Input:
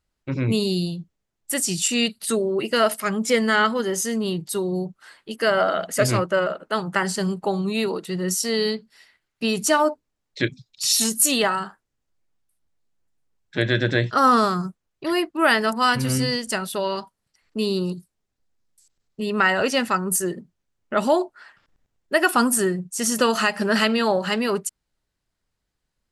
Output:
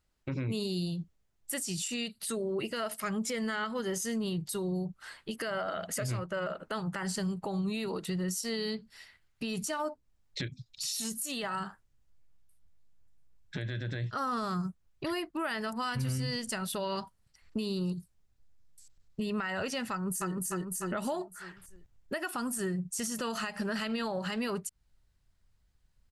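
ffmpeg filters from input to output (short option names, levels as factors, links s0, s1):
-filter_complex "[0:a]asplit=2[s0][s1];[s1]afade=t=in:st=19.91:d=0.01,afade=t=out:st=20.34:d=0.01,aecho=0:1:300|600|900|1200|1500:0.794328|0.317731|0.127093|0.050837|0.0203348[s2];[s0][s2]amix=inputs=2:normalize=0,asubboost=boost=3.5:cutoff=150,acompressor=threshold=0.0282:ratio=4,alimiter=level_in=1.12:limit=0.0631:level=0:latency=1:release=76,volume=0.891"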